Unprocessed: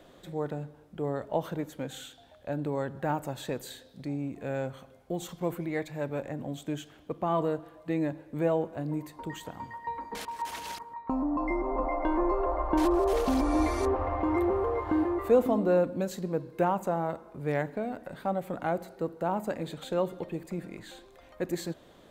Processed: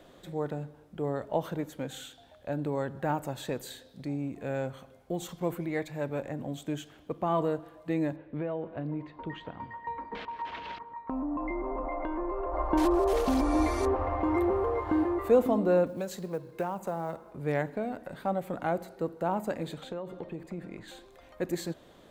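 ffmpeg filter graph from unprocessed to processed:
-filter_complex "[0:a]asettb=1/sr,asplit=3[s0][s1][s2];[s0]atrim=end=8.164[s3];[s1]atrim=start=8.16:end=12.54,asetpts=PTS-STARTPTS,afade=t=in:d=0.004:c=qsin,afade=t=out:st=4.376:d=0.004:c=qsin,lowpass=f=3400:w=0.5412,lowpass=f=3400:w=1.3066,acompressor=threshold=0.0355:ratio=5:attack=3.2:release=140:knee=1:detection=peak,equalizer=f=820:t=o:w=0.23:g=-3[s4];[s2]atrim=start=12.536[s5];[s3][s4]acrossfade=d=0.004:c1=hsin:c2=qsin[s6];[s6][s5]acrossfade=d=0.004:c1=qsin:c2=hsin,asettb=1/sr,asplit=3[s7][s8][s9];[s7]atrim=end=15.864[s10];[s8]atrim=start=15.86:end=17.32,asetpts=PTS-STARTPTS,afade=t=in:d=0.004:c=qsin,afade=t=out:st=1.456:d=0.004:c=qsin,equalizer=f=270:t=o:w=0.4:g=-6,acrossover=split=110|400[s11][s12][s13];[s11]acompressor=threshold=0.00112:ratio=4[s14];[s12]acompressor=threshold=0.0126:ratio=4[s15];[s13]acompressor=threshold=0.0251:ratio=4[s16];[s14][s15][s16]amix=inputs=3:normalize=0,acrusher=bits=8:mode=log:mix=0:aa=0.000001[s17];[s9]atrim=start=17.316[s18];[s10][s17]acrossfade=d=0.004:c1=hsin:c2=qsin[s19];[s19][s18]acrossfade=d=0.004:c1=qsin:c2=hsin,asettb=1/sr,asplit=3[s20][s21][s22];[s20]atrim=end=19.814[s23];[s21]atrim=start=19.81:end=20.88,asetpts=PTS-STARTPTS,afade=t=in:d=0.004:c=qsin,afade=t=out:st=1.066:d=0.004:c=qsin,lowpass=f=3000:p=1,acompressor=threshold=0.0251:ratio=12:attack=3.2:release=140:knee=1:detection=peak[s24];[s22]atrim=start=20.876[s25];[s23][s24]acrossfade=d=0.004:c1=hsin:c2=qsin[s26];[s26][s25]acrossfade=d=0.004:c1=qsin:c2=hsin"

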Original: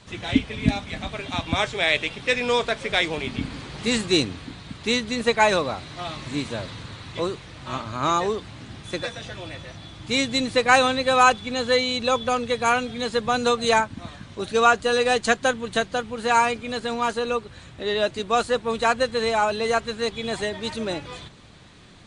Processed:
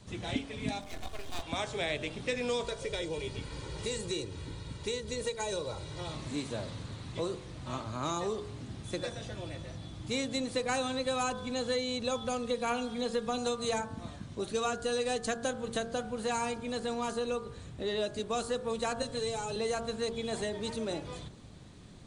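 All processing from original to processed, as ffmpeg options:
-filter_complex "[0:a]asettb=1/sr,asplit=3[s0][s1][s2];[s0]atrim=end=0.814[s3];[s1]atrim=start=0.81:end=1.42,asetpts=PTS-STARTPTS,afade=t=in:d=0.004:c=qsin,afade=t=out:st=0.606:d=0.004:c=qsin,aeval=exprs='max(val(0),0)':c=same,aecho=1:1:2.8:0.4,atrim=end_sample=26901,asubboost=boost=11.5:cutoff=130[s4];[s2]atrim=start=1.416[s5];[s3][s4]acrossfade=d=0.004:c1=hsin:c2=qsin[s6];[s6][s5]acrossfade=d=0.004:c1=qsin:c2=hsin,asettb=1/sr,asplit=3[s7][s8][s9];[s7]atrim=end=2.644[s10];[s8]atrim=start=2.64:end=6.14,asetpts=PTS-STARTPTS,afade=t=in:d=0.004:c=qsin,afade=t=out:st=3.496:d=0.004:c=qsin,aecho=1:1:2.1:0.71,atrim=end_sample=154350,acrossover=split=690|3100[s11][s12][s13];[s11]acompressor=threshold=0.0282:ratio=4[s14];[s12]acompressor=threshold=0.0158:ratio=4[s15];[s13]acompressor=threshold=0.0282:ratio=4[s16];[s14][s15][s16]amix=inputs=3:normalize=0[s17];[s9]atrim=start=6.136[s18];[s10][s17]acrossfade=d=0.004:c1=hsin:c2=qsin[s19];[s19][s18]acrossfade=d=0.004:c1=qsin:c2=hsin,asettb=1/sr,asplit=3[s20][s21][s22];[s20]atrim=end=12.444[s23];[s21]atrim=start=12.44:end=13.38,asetpts=PTS-STARTPTS,afade=t=in:d=0.004:c=qsin,afade=t=out:st=0.936:d=0.004:c=qsin,acrossover=split=4300[s24][s25];[s25]acompressor=threshold=0.00708:ratio=4:attack=1:release=60[s26];[s24][s26]amix=inputs=2:normalize=0,aecho=1:1:4.3:0.63,atrim=end_sample=41454[s27];[s22]atrim=start=13.376[s28];[s23][s27]acrossfade=d=0.004:c1=hsin:c2=qsin[s29];[s29][s28]acrossfade=d=0.004:c1=qsin:c2=hsin,asettb=1/sr,asplit=3[s30][s31][s32];[s30]atrim=end=19.024[s33];[s31]atrim=start=19.02:end=19.56,asetpts=PTS-STARTPTS,afade=t=in:d=0.004:c=qsin,afade=t=out:st=0.536:d=0.004:c=qsin,aecho=1:1:7:0.79,atrim=end_sample=23814,acrossover=split=280|3000[s34][s35][s36];[s35]acompressor=threshold=0.0224:ratio=3:attack=3.2:release=140:knee=2.83:detection=peak[s37];[s34][s37][s36]amix=inputs=3:normalize=0[s38];[s32]atrim=start=19.556[s39];[s33][s38]acrossfade=d=0.004:c1=hsin:c2=qsin[s40];[s40][s39]acrossfade=d=0.004:c1=qsin:c2=hsin,equalizer=f=2200:w=0.38:g=-11,bandreject=f=46.13:t=h:w=4,bandreject=f=92.26:t=h:w=4,bandreject=f=138.39:t=h:w=4,bandreject=f=184.52:t=h:w=4,bandreject=f=230.65:t=h:w=4,bandreject=f=276.78:t=h:w=4,bandreject=f=322.91:t=h:w=4,bandreject=f=369.04:t=h:w=4,bandreject=f=415.17:t=h:w=4,bandreject=f=461.3:t=h:w=4,bandreject=f=507.43:t=h:w=4,bandreject=f=553.56:t=h:w=4,bandreject=f=599.69:t=h:w=4,bandreject=f=645.82:t=h:w=4,bandreject=f=691.95:t=h:w=4,bandreject=f=738.08:t=h:w=4,bandreject=f=784.21:t=h:w=4,bandreject=f=830.34:t=h:w=4,bandreject=f=876.47:t=h:w=4,bandreject=f=922.6:t=h:w=4,bandreject=f=968.73:t=h:w=4,bandreject=f=1014.86:t=h:w=4,bandreject=f=1060.99:t=h:w=4,bandreject=f=1107.12:t=h:w=4,bandreject=f=1153.25:t=h:w=4,bandreject=f=1199.38:t=h:w=4,bandreject=f=1245.51:t=h:w=4,bandreject=f=1291.64:t=h:w=4,bandreject=f=1337.77:t=h:w=4,bandreject=f=1383.9:t=h:w=4,bandreject=f=1430.03:t=h:w=4,bandreject=f=1476.16:t=h:w=4,bandreject=f=1522.29:t=h:w=4,bandreject=f=1568.42:t=h:w=4,bandreject=f=1614.55:t=h:w=4,bandreject=f=1660.68:t=h:w=4,bandreject=f=1706.81:t=h:w=4,bandreject=f=1752.94:t=h:w=4,acrossover=split=420|2300[s41][s42][s43];[s41]acompressor=threshold=0.0126:ratio=4[s44];[s42]acompressor=threshold=0.02:ratio=4[s45];[s43]acompressor=threshold=0.0141:ratio=4[s46];[s44][s45][s46]amix=inputs=3:normalize=0"

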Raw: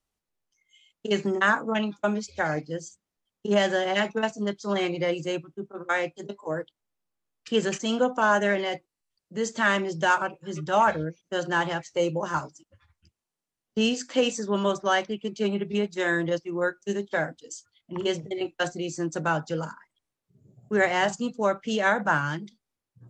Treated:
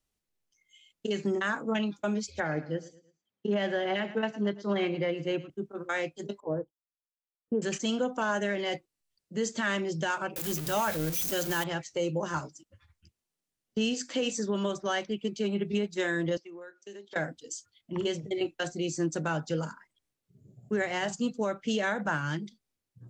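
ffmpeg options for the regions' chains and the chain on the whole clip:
-filter_complex "[0:a]asettb=1/sr,asplit=3[s0][s1][s2];[s0]atrim=end=2.404[s3];[s1]atrim=start=2.4:end=5.5,asetpts=PTS-STARTPTS,afade=t=in:d=0.004:c=qsin,afade=t=out:st=3.096:d=0.004:c=qsin,highpass=110,lowpass=3000,aecho=1:1:110|220|330:0.133|0.052|0.0203,atrim=end_sample=136710[s4];[s2]atrim=start=5.496[s5];[s3][s4]acrossfade=d=0.004:c1=hsin:c2=qsin[s6];[s6][s5]acrossfade=d=0.004:c1=qsin:c2=hsin,asettb=1/sr,asplit=3[s7][s8][s9];[s7]atrim=end=6.404[s10];[s8]atrim=start=6.4:end=7.62,asetpts=PTS-STARTPTS,afade=t=in:d=0.004:c=qsin,afade=t=out:st=1.216:d=0.004:c=qsin,lowpass=f=1000:w=0.5412,lowpass=f=1000:w=1.3066,agate=range=0.0224:threshold=0.00316:ratio=3:release=100:detection=peak[s11];[s9]atrim=start=7.616[s12];[s10][s11]acrossfade=d=0.004:c1=hsin:c2=qsin[s13];[s13][s12]acrossfade=d=0.004:c1=qsin:c2=hsin,asettb=1/sr,asplit=3[s14][s15][s16];[s14]atrim=end=10.364[s17];[s15]atrim=start=10.36:end=11.64,asetpts=PTS-STARTPTS,afade=t=in:d=0.004:c=qsin,afade=t=out:st=1.276:d=0.004:c=qsin,aeval=exprs='val(0)+0.5*0.0251*sgn(val(0))':c=same,aemphasis=mode=production:type=50fm,bandreject=f=50:t=h:w=6,bandreject=f=100:t=h:w=6,bandreject=f=150:t=h:w=6[s18];[s16]atrim=start=11.636[s19];[s17][s18]acrossfade=d=0.004:c1=hsin:c2=qsin[s20];[s20][s19]acrossfade=d=0.004:c1=qsin:c2=hsin,asettb=1/sr,asplit=3[s21][s22][s23];[s21]atrim=end=16.374[s24];[s22]atrim=start=16.37:end=17.16,asetpts=PTS-STARTPTS,afade=t=in:d=0.004:c=qsin,afade=t=out:st=0.786:d=0.004:c=qsin,highpass=380,lowpass=6600,acompressor=threshold=0.00891:ratio=8:attack=3.2:release=140:knee=1:detection=peak[s25];[s23]atrim=start=17.156[s26];[s24][s25]acrossfade=d=0.004:c1=hsin:c2=qsin[s27];[s27][s26]acrossfade=d=0.004:c1=qsin:c2=hsin,equalizer=f=980:w=0.87:g=-5.5,alimiter=limit=0.0891:level=0:latency=1:release=221,volume=1.12"

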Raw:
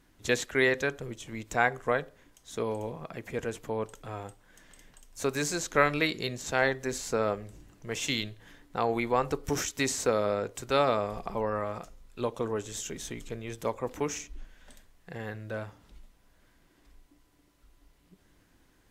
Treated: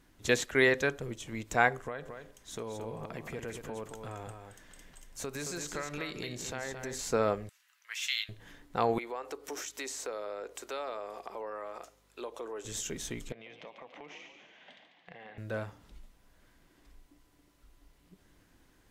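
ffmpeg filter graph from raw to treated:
-filter_complex "[0:a]asettb=1/sr,asplit=3[s0][s1][s2];[s0]atrim=end=1.834[s3];[s1]atrim=start=1.83:end=6.99,asetpts=PTS-STARTPTS,afade=t=in:d=0.004:c=qsin,afade=t=out:st=5.156:d=0.004:c=qsin,acompressor=threshold=0.0158:ratio=4:attack=3.2:release=140:knee=1:detection=peak,aecho=1:1:222:0.473,atrim=end_sample=227556[s4];[s2]atrim=start=6.986[s5];[s3][s4]acrossfade=d=0.004:c1=hsin:c2=qsin[s6];[s6][s5]acrossfade=d=0.004:c1=qsin:c2=hsin,asettb=1/sr,asplit=3[s7][s8][s9];[s7]atrim=end=7.494[s10];[s8]atrim=start=7.49:end=8.29,asetpts=PTS-STARTPTS,afade=t=in:d=0.004:c=qsin,afade=t=out:st=0.796:d=0.004:c=qsin,highpass=f=1400:w=0.5412,highpass=f=1400:w=1.3066,equalizer=f=7600:w=1.2:g=-6.5,asplit=2[s11][s12];[s12]adelay=18,volume=0.237[s13];[s11][s13]amix=inputs=2:normalize=0,atrim=end_sample=35280[s14];[s9]atrim=start=8.286[s15];[s10][s14]acrossfade=d=0.004:c1=hsin:c2=qsin[s16];[s16][s15]acrossfade=d=0.004:c1=qsin:c2=hsin,asettb=1/sr,asplit=3[s17][s18][s19];[s17]atrim=end=8.984[s20];[s18]atrim=start=8.98:end=12.65,asetpts=PTS-STARTPTS,afade=t=in:d=0.004:c=qsin,afade=t=out:st=3.666:d=0.004:c=qsin,highpass=f=320:w=0.5412,highpass=f=320:w=1.3066,acompressor=threshold=0.01:ratio=2.5:attack=3.2:release=140:knee=1:detection=peak,aeval=exprs='val(0)+0.000316*(sin(2*PI*50*n/s)+sin(2*PI*2*50*n/s)/2+sin(2*PI*3*50*n/s)/3+sin(2*PI*4*50*n/s)/4+sin(2*PI*5*50*n/s)/5)':c=same[s21];[s19]atrim=start=12.646[s22];[s20][s21]acrossfade=d=0.004:c1=hsin:c2=qsin[s23];[s23][s22]acrossfade=d=0.004:c1=qsin:c2=hsin,asettb=1/sr,asplit=3[s24][s25][s26];[s24]atrim=end=13.324[s27];[s25]atrim=start=13.32:end=15.38,asetpts=PTS-STARTPTS,afade=t=in:d=0.004:c=qsin,afade=t=out:st=2.056:d=0.004:c=qsin,highpass=f=170:w=0.5412,highpass=f=170:w=1.3066,equalizer=f=230:t=q:w=4:g=-6,equalizer=f=360:t=q:w=4:g=-8,equalizer=f=730:t=q:w=4:g=7,equalizer=f=1400:t=q:w=4:g=-3,equalizer=f=2100:t=q:w=4:g=7,equalizer=f=3000:t=q:w=4:g=7,lowpass=f=4100:w=0.5412,lowpass=f=4100:w=1.3066,acompressor=threshold=0.00501:ratio=6:attack=3.2:release=140:knee=1:detection=peak,asplit=7[s28][s29][s30][s31][s32][s33][s34];[s29]adelay=143,afreqshift=52,volume=0.398[s35];[s30]adelay=286,afreqshift=104,volume=0.204[s36];[s31]adelay=429,afreqshift=156,volume=0.104[s37];[s32]adelay=572,afreqshift=208,volume=0.0531[s38];[s33]adelay=715,afreqshift=260,volume=0.0269[s39];[s34]adelay=858,afreqshift=312,volume=0.0138[s40];[s28][s35][s36][s37][s38][s39][s40]amix=inputs=7:normalize=0,atrim=end_sample=90846[s41];[s26]atrim=start=15.376[s42];[s27][s41]acrossfade=d=0.004:c1=hsin:c2=qsin[s43];[s43][s42]acrossfade=d=0.004:c1=qsin:c2=hsin"

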